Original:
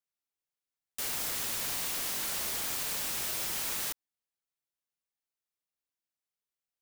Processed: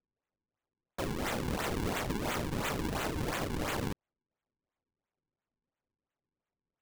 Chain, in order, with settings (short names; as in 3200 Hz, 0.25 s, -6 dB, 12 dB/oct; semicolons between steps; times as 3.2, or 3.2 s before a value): decimation with a swept rate 40×, swing 160% 2.9 Hz